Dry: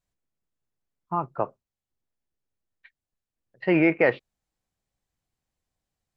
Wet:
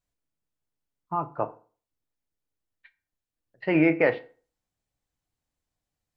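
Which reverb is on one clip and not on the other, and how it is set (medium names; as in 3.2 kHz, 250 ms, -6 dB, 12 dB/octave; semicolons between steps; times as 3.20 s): FDN reverb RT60 0.4 s, low-frequency decay 1×, high-frequency decay 0.75×, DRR 9 dB; trim -2 dB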